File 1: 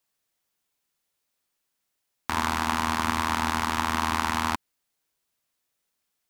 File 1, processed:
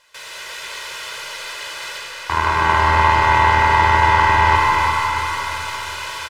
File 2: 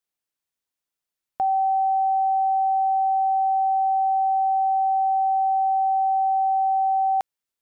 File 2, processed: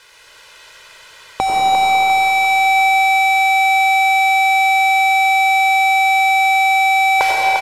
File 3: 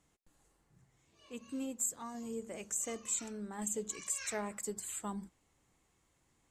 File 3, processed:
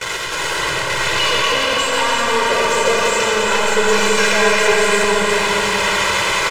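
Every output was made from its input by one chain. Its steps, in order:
spike at every zero crossing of −13 dBFS
low-pass filter 2,100 Hz 12 dB per octave
mains-hum notches 50/100/150/200 Hz
in parallel at −5 dB: slack as between gear wheels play −35.5 dBFS
on the sum: comb filter 2 ms, depth 90%
noise gate with hold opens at −26 dBFS
on a send: echo with a time of its own for lows and highs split 480 Hz, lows 97 ms, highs 349 ms, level −5 dB
on the sum: comb and all-pass reverb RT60 4.4 s, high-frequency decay 0.65×, pre-delay 50 ms, DRR −3 dB
normalise the peak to −1.5 dBFS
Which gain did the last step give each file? +1.0, +12.5, +11.0 decibels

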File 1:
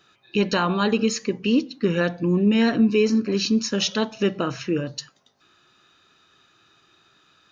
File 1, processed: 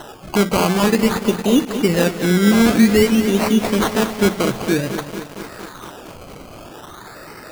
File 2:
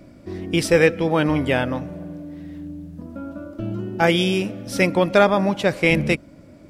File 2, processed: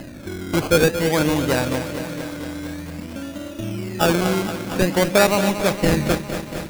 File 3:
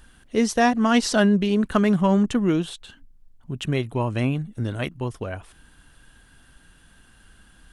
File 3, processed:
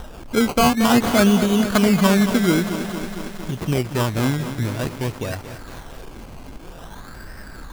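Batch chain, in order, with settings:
upward compression, threshold −26 dBFS
sample-and-hold swept by an LFO 19×, swing 60% 0.51 Hz
feedback echo at a low word length 229 ms, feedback 80%, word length 6 bits, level −10 dB
normalise the peak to −3 dBFS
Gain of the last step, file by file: +5.0, −0.5, +2.5 decibels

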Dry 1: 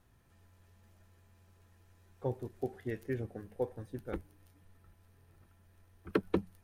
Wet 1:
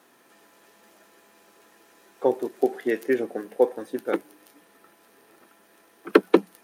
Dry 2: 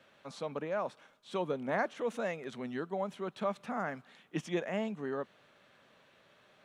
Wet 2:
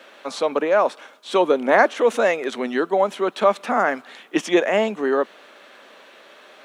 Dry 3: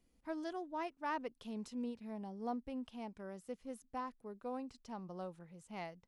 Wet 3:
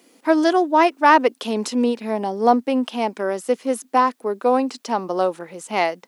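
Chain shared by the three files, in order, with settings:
high-pass filter 270 Hz 24 dB per octave
normalise the peak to −1.5 dBFS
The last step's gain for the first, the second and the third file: +15.5, +17.5, +26.0 decibels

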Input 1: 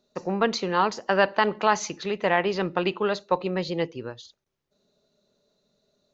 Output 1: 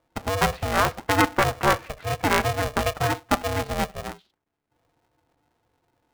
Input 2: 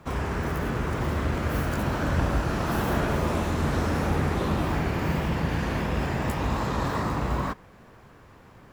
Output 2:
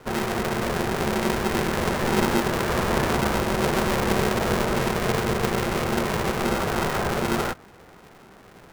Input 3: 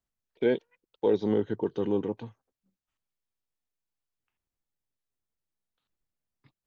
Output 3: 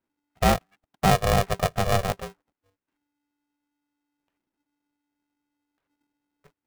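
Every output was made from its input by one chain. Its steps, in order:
low-pass filter 2,300 Hz 24 dB per octave
ring modulator with a square carrier 290 Hz
loudness normalisation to −24 LKFS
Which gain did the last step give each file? +1.0, +2.5, +5.0 decibels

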